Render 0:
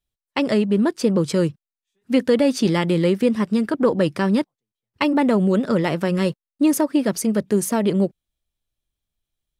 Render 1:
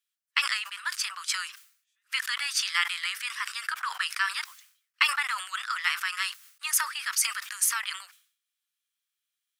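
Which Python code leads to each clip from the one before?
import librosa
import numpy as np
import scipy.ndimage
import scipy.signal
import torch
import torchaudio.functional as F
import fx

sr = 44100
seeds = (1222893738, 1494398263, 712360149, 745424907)

y = scipy.signal.sosfilt(scipy.signal.butter(8, 1200.0, 'highpass', fs=sr, output='sos'), x)
y = fx.peak_eq(y, sr, hz=3800.0, db=-3.0, octaves=0.23)
y = fx.sustainer(y, sr, db_per_s=110.0)
y = y * librosa.db_to_amplitude(3.0)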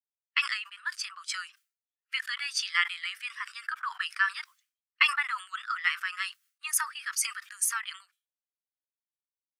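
y = fx.spectral_expand(x, sr, expansion=1.5)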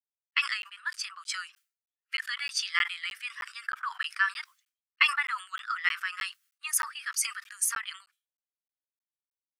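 y = fx.buffer_crackle(x, sr, first_s=0.31, period_s=0.31, block=512, kind='zero')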